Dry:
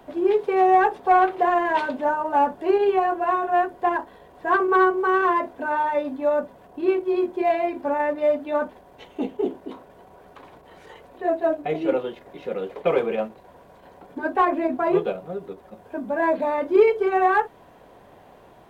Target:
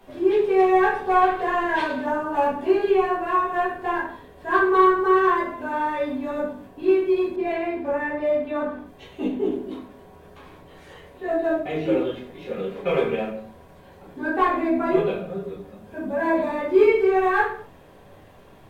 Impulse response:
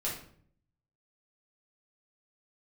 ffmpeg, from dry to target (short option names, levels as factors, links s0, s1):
-filter_complex "[0:a]equalizer=f=650:w=0.48:g=-7[s0];[1:a]atrim=start_sample=2205,afade=t=out:st=0.29:d=0.01,atrim=end_sample=13230,asetrate=39690,aresample=44100[s1];[s0][s1]afir=irnorm=-1:irlink=0,asettb=1/sr,asplit=3[s2][s3][s4];[s2]atrim=end=7.364[s5];[s3]atrim=start=7.36:end=9.52,asetpts=PTS-STARTPTS,afade=t=in:d=0.004:c=qsin,afade=t=out:st=2.156:d=0.004:c=qsin,adynamicequalizer=threshold=0.00501:dfrequency=3100:dqfactor=0.7:tfrequency=3100:tqfactor=0.7:attack=5:release=100:ratio=0.375:range=3.5:mode=cutabove:tftype=highshelf[s6];[s4]atrim=start=9.516[s7];[s5][s6]acrossfade=d=0.004:c1=hsin:c2=qsin[s8];[s8][s7]acrossfade=d=0.004:c1=qsin:c2=hsin"